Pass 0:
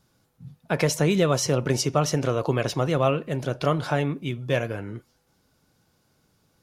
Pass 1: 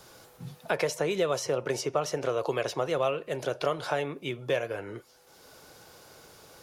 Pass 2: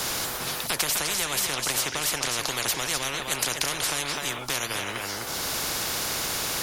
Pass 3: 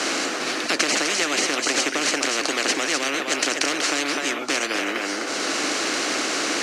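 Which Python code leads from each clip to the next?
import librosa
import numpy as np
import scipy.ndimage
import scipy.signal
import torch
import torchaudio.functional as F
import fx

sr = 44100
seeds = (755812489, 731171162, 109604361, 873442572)

y1 = fx.low_shelf_res(x, sr, hz=320.0, db=-9.0, q=1.5)
y1 = fx.band_squash(y1, sr, depth_pct=70)
y1 = y1 * 10.0 ** (-5.0 / 20.0)
y2 = y1 + 10.0 ** (-13.0 / 20.0) * np.pad(y1, (int(254 * sr / 1000.0), 0))[:len(y1)]
y2 = fx.spectral_comp(y2, sr, ratio=10.0)
y2 = y2 * 10.0 ** (7.5 / 20.0)
y3 = (np.kron(y2[::3], np.eye(3)[0]) * 3)[:len(y2)]
y3 = fx.cabinet(y3, sr, low_hz=240.0, low_slope=24, high_hz=6200.0, hz=(300.0, 940.0, 3500.0, 5100.0), db=(8, -8, -8, -5))
y3 = y3 * 10.0 ** (7.5 / 20.0)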